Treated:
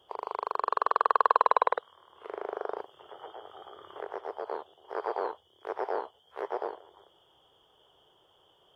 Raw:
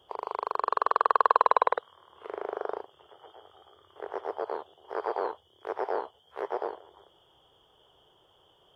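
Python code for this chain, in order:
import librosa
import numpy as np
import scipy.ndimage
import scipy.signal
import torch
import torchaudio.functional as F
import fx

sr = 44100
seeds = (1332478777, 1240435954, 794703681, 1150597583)

y = fx.low_shelf(x, sr, hz=150.0, db=-5.5)
y = fx.band_squash(y, sr, depth_pct=70, at=(2.78, 4.45))
y = y * librosa.db_to_amplitude(-1.0)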